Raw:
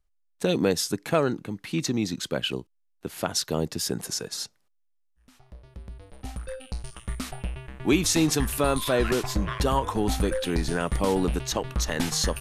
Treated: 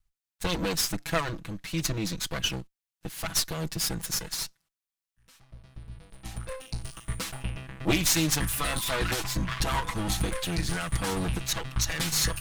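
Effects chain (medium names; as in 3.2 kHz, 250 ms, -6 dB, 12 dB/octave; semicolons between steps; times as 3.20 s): comb filter that takes the minimum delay 6.1 ms; peaking EQ 460 Hz -10 dB 2.1 oct, from 6.34 s -4 dB, from 7.91 s -11 dB; trim +3 dB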